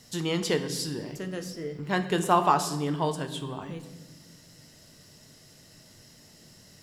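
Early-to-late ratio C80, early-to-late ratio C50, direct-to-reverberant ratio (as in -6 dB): 13.0 dB, 11.0 dB, 7.0 dB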